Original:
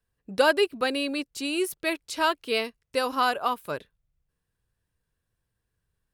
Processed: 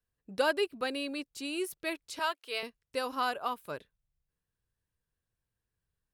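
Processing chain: 2.19–2.63 HPF 570 Hz 12 dB/oct; gain -7.5 dB

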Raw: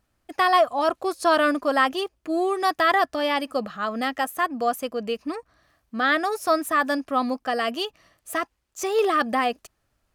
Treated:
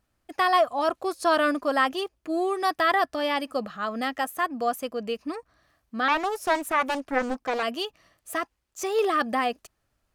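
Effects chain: 2.6–3.12 notch 6800 Hz, Q 8.9; 6.08–7.63 Doppler distortion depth 0.67 ms; gain -2.5 dB

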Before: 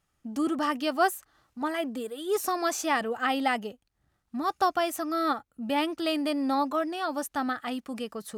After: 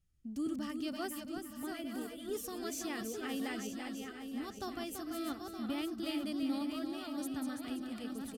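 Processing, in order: regenerating reverse delay 0.459 s, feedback 57%, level -6 dB; passive tone stack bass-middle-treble 10-0-1; echo 0.335 s -7 dB; gain +11 dB

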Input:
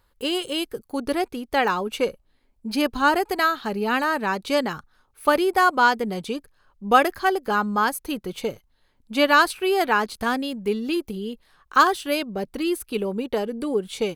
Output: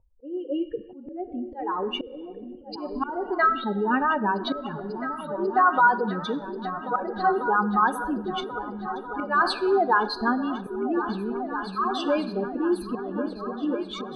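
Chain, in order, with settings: spectral contrast raised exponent 2.8; on a send at -12 dB: reverb RT60 0.90 s, pre-delay 7 ms; on the sum: auto swell 0.334 s; low-pass sweep 690 Hz -> 5500 Hz, 0.01–1.76; repeats that get brighter 0.543 s, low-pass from 200 Hz, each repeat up 2 oct, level -6 dB

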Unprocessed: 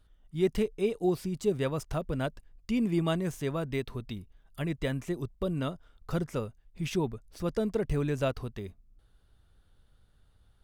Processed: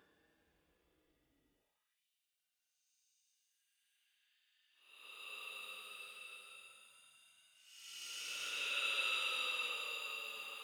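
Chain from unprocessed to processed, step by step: slices in reverse order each 96 ms, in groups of 5; Paulstretch 29×, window 0.05 s, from 6.25; high-pass sweep 300 Hz -> 2800 Hz, 1.52–2.04; gain +4 dB

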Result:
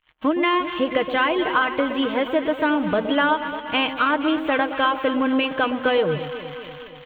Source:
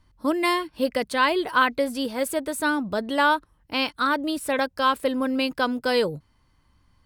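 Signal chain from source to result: switching spikes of -22.5 dBFS; gate -35 dBFS, range -31 dB; elliptic low-pass 3200 Hz, stop band 40 dB; comb 6.4 ms, depth 39%; compressor, threshold -23 dBFS, peak gain reduction 8.5 dB; echo with dull and thin repeats by turns 0.119 s, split 930 Hz, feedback 79%, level -9 dB; gain +6.5 dB

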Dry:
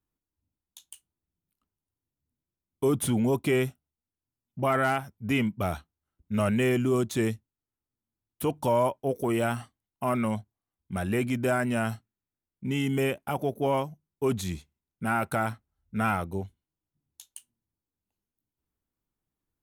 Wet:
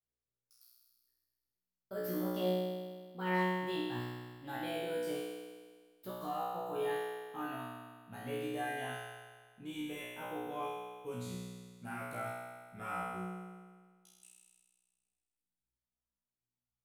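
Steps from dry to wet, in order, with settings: speed glide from 152% -> 81%; resonator 61 Hz, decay 1.6 s, harmonics all, mix 100%; gain +3.5 dB

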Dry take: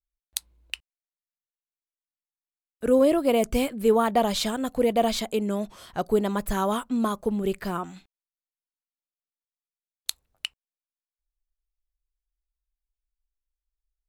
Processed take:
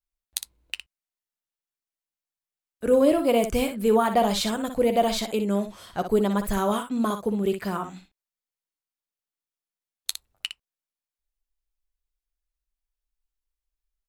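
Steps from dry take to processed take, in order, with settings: 6.71–7.85 HPF 55 Hz; on a send: early reflections 10 ms -11.5 dB, 60 ms -8.5 dB

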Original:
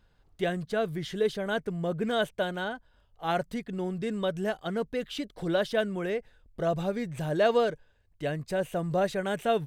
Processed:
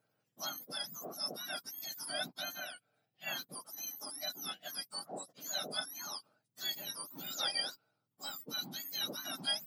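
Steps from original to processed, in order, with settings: spectrum mirrored in octaves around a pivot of 1500 Hz; gain -6.5 dB

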